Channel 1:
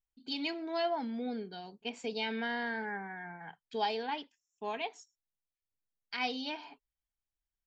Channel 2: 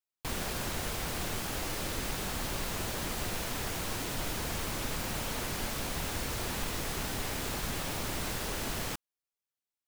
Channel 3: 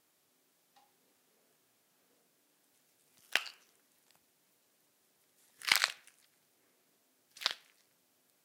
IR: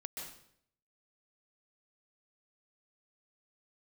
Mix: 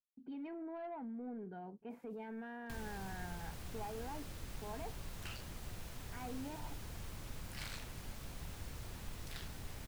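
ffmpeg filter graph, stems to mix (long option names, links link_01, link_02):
-filter_complex "[0:a]lowpass=frequency=1700:width=0.5412,lowpass=frequency=1700:width=1.3066,lowshelf=frequency=340:gain=6.5,agate=range=-33dB:threshold=-58dB:ratio=3:detection=peak,volume=-3dB[link_01];[1:a]acrossover=split=160[link_02][link_03];[link_03]acompressor=threshold=-52dB:ratio=2[link_04];[link_02][link_04]amix=inputs=2:normalize=0,adelay=2450,volume=-7.5dB[link_05];[2:a]adelay=1900,volume=-4dB[link_06];[link_01][link_06]amix=inputs=2:normalize=0,asoftclip=type=tanh:threshold=-30dB,alimiter=level_in=16.5dB:limit=-24dB:level=0:latency=1:release=30,volume=-16.5dB,volume=0dB[link_07];[link_05][link_07]amix=inputs=2:normalize=0"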